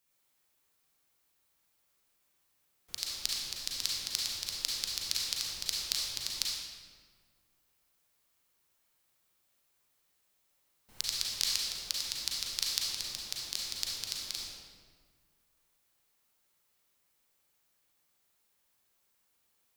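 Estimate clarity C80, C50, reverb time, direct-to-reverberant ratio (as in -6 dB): 0.5 dB, -2.0 dB, 1.7 s, -4.0 dB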